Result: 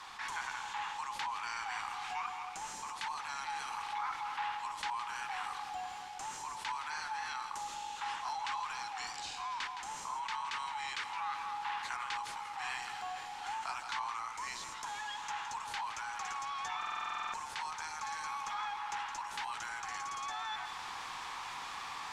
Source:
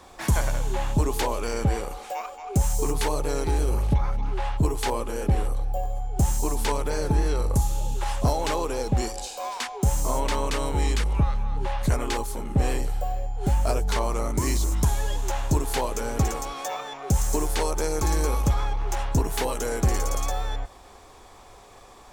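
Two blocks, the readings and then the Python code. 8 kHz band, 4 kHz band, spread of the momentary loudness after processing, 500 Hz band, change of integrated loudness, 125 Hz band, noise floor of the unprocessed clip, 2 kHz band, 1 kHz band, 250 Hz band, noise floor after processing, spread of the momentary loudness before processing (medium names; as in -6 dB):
-14.0 dB, -6.5 dB, 4 LU, -29.0 dB, -12.5 dB, under -35 dB, -48 dBFS, -3.0 dB, -5.0 dB, -32.0 dB, -45 dBFS, 7 LU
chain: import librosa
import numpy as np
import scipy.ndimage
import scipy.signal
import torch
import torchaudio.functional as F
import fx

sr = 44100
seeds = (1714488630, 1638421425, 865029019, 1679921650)

y = fx.tilt_eq(x, sr, slope=3.0)
y = fx.dmg_noise_colour(y, sr, seeds[0], colour='blue', level_db=-42.0)
y = scipy.signal.sosfilt(scipy.signal.butter(12, 820.0, 'highpass', fs=sr, output='sos'), y)
y = fx.rider(y, sr, range_db=10, speed_s=0.5)
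y = fx.mod_noise(y, sr, seeds[1], snr_db=18)
y = fx.spacing_loss(y, sr, db_at_10k=32)
y = y + 10.0 ** (-14.0 / 20.0) * np.pad(y, (int(165 * sr / 1000.0), 0))[:len(y)]
y = fx.buffer_glitch(y, sr, at_s=(16.78,), block=2048, repeats=11)
y = fx.env_flatten(y, sr, amount_pct=50)
y = F.gain(torch.from_numpy(y), -5.5).numpy()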